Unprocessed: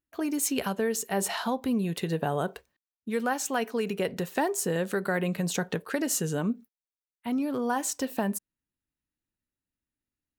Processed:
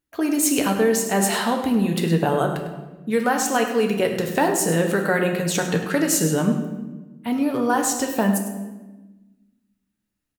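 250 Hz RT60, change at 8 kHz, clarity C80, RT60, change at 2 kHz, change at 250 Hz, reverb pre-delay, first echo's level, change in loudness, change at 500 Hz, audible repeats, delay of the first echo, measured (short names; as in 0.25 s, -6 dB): 1.8 s, +8.0 dB, 7.0 dB, 1.2 s, +8.5 dB, +8.5 dB, 7 ms, -11.5 dB, +8.5 dB, +8.5 dB, 1, 0.102 s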